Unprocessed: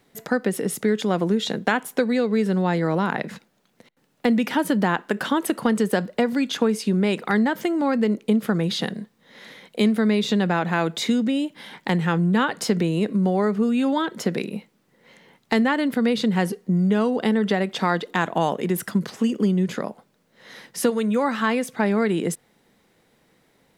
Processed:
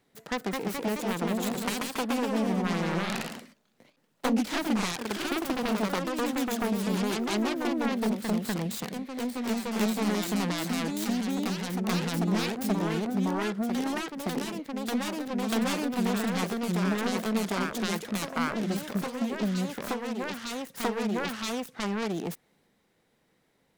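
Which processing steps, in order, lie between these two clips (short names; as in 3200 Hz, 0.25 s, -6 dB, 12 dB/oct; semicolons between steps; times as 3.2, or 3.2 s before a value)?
self-modulated delay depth 0.74 ms; echoes that change speed 0.231 s, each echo +1 st, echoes 3; gain -8.5 dB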